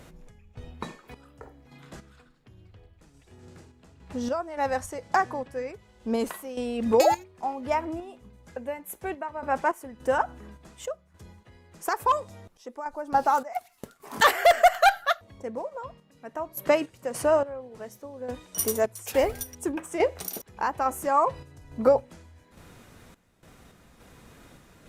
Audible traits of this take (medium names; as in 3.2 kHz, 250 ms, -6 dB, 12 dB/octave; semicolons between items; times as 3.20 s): random-step tremolo, depth 85%; Opus